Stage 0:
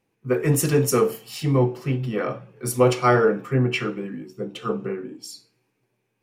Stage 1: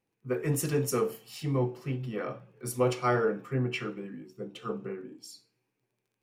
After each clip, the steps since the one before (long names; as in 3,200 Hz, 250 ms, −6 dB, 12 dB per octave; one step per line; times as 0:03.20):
surface crackle 15 per second −51 dBFS
level −9 dB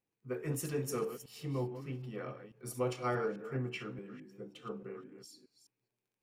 delay that plays each chunk backwards 210 ms, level −10.5 dB
level −8 dB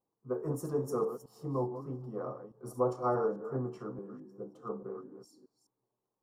drawn EQ curve 110 Hz 0 dB, 1,100 Hz +9 dB, 2,400 Hz −28 dB, 5,500 Hz −7 dB
level −1 dB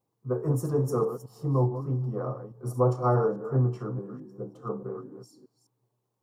parametric band 120 Hz +12 dB 0.51 octaves
level +5 dB